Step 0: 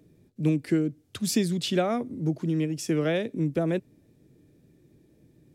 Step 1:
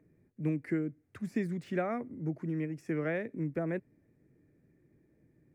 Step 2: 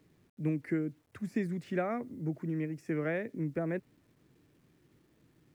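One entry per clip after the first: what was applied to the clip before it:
de-esser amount 85%; resonant high shelf 2600 Hz -9 dB, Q 3; gain -8 dB
requantised 12-bit, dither none

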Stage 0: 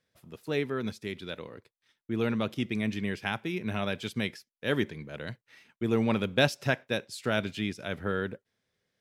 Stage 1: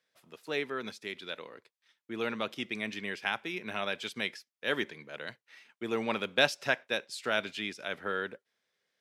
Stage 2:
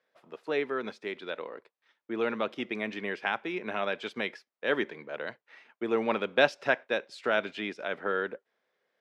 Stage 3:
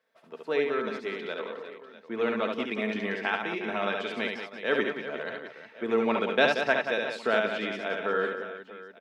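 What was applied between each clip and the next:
weighting filter A
band-pass 630 Hz, Q 0.69; dynamic EQ 730 Hz, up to -4 dB, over -43 dBFS, Q 0.78; gain +8.5 dB
comb 4.5 ms, depth 32%; on a send: reverse bouncing-ball echo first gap 70 ms, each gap 1.6×, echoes 5

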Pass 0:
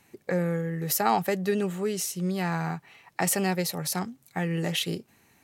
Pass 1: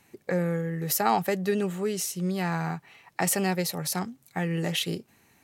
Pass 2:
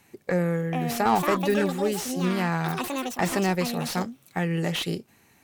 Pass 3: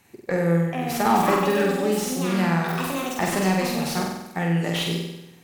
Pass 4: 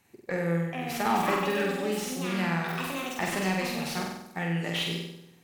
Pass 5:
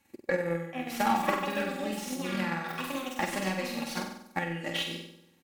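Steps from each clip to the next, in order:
nothing audible
added harmonics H 2 -15 dB, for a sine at -8.5 dBFS; echoes that change speed 0.524 s, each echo +6 st, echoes 2, each echo -6 dB; slew limiter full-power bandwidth 140 Hz; gain +2 dB
flutter echo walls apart 8.1 m, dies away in 0.91 s
dynamic EQ 2500 Hz, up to +6 dB, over -41 dBFS, Q 0.93; gain -7.5 dB
comb 3.6 ms, depth 65%; transient shaper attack +9 dB, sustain -3 dB; gain -5 dB

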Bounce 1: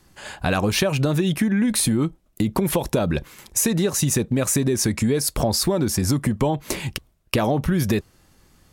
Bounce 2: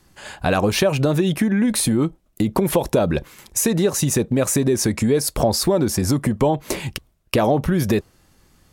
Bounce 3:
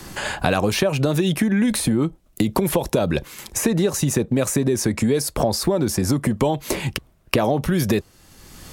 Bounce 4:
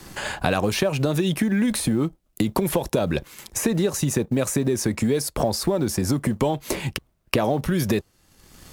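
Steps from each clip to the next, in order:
dynamic EQ 550 Hz, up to +5 dB, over -33 dBFS, Q 0.72
three-band squash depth 70%; gain -1.5 dB
G.711 law mismatch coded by A; gain -2 dB

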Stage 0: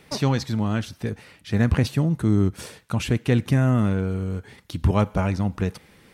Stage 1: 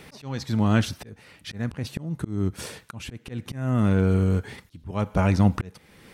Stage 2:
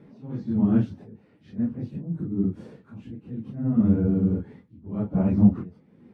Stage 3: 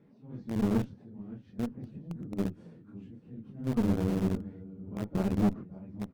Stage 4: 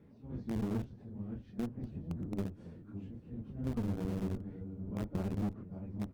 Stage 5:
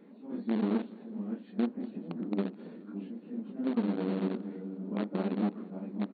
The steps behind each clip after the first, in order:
auto swell 0.632 s; gain +6 dB
phase scrambler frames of 0.1 s; band-pass 230 Hz, Q 1.5; gain +3.5 dB
feedback echo 0.564 s, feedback 27%, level -13 dB; in parallel at -6 dB: sample gate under -21 dBFS; on the sum: tube stage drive 15 dB, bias 0.8; gain -5.5 dB
octaver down 1 oct, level -4 dB; compressor 4:1, threshold -33 dBFS, peak gain reduction 11.5 dB
brick-wall FIR band-pass 180–4500 Hz; feedback echo 0.211 s, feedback 57%, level -22 dB; on a send at -23.5 dB: reverb, pre-delay 3 ms; on the sum: gain +7.5 dB

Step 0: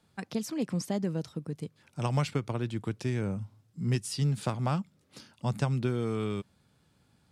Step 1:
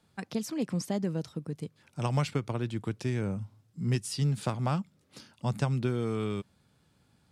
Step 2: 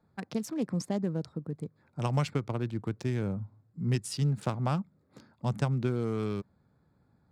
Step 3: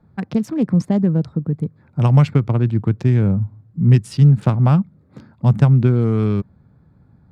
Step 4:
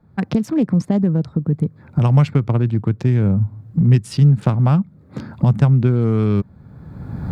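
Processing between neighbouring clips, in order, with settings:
nothing audible
Wiener smoothing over 15 samples
tone controls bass +9 dB, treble -10 dB; gain +9 dB
recorder AGC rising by 27 dB/s; gain -1 dB

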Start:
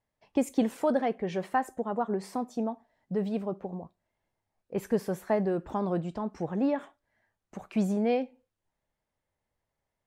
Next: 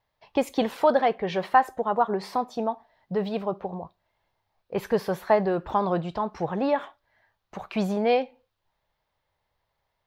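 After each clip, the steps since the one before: graphic EQ 250/1000/4000/8000 Hz -8/+5/+8/-11 dB; gain +6 dB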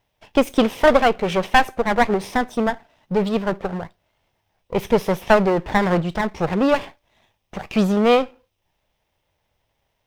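minimum comb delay 0.35 ms; gain +7.5 dB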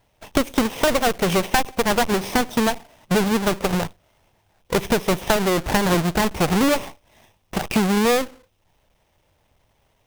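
half-waves squared off; compressor 6:1, threshold -20 dBFS, peak gain reduction 13 dB; gain +3 dB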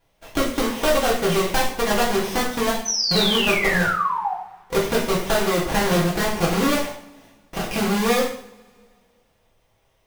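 painted sound fall, 2.85–4.34, 720–6200 Hz -22 dBFS; reverb, pre-delay 3 ms, DRR -5.5 dB; gain -7 dB

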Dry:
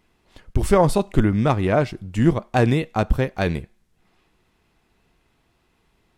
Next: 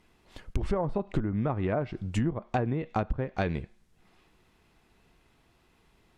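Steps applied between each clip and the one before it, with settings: treble ducked by the level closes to 1400 Hz, closed at -13.5 dBFS; compressor 16:1, threshold -24 dBFS, peak gain reduction 15 dB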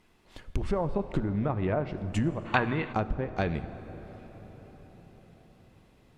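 notches 60/120 Hz; on a send at -11.5 dB: reverb RT60 5.6 s, pre-delay 9 ms; on the sum: spectral gain 2.46–2.93, 840–4600 Hz +12 dB

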